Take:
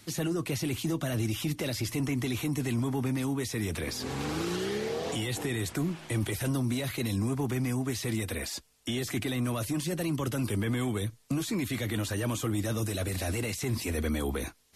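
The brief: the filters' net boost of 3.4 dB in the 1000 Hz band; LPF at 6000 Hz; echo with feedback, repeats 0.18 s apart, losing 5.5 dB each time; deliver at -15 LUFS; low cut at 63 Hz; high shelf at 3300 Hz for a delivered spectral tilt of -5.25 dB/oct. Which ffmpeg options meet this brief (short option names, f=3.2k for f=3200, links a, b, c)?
-af "highpass=63,lowpass=6k,equalizer=f=1k:t=o:g=4,highshelf=f=3.3k:g=4,aecho=1:1:180|360|540|720|900|1080|1260:0.531|0.281|0.149|0.079|0.0419|0.0222|0.0118,volume=15dB"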